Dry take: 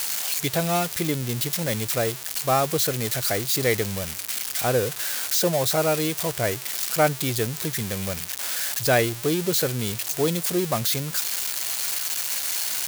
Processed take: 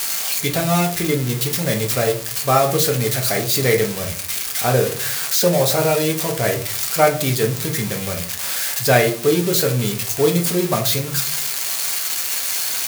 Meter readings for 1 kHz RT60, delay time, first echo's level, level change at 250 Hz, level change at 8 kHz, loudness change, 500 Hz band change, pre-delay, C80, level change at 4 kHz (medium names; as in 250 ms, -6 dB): 0.40 s, no echo, no echo, +5.5 dB, +4.5 dB, +5.0 dB, +6.5 dB, 4 ms, 16.0 dB, +4.5 dB